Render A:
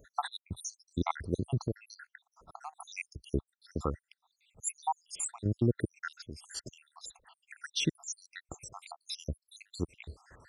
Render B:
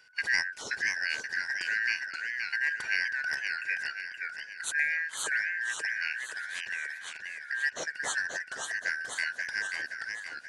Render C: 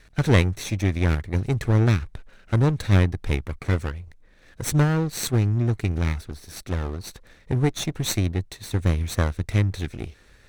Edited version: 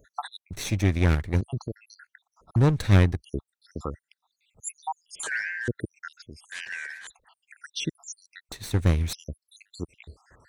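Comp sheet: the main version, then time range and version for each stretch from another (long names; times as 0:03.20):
A
0:00.53–0:01.41: punch in from C
0:02.56–0:03.17: punch in from C
0:05.23–0:05.68: punch in from B
0:06.52–0:07.07: punch in from B
0:08.52–0:09.13: punch in from C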